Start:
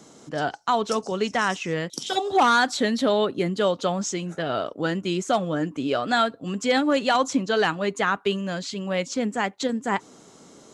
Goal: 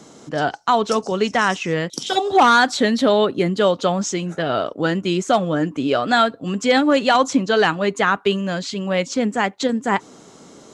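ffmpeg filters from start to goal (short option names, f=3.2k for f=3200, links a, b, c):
-af "highshelf=f=8.8k:g=-6,volume=5.5dB"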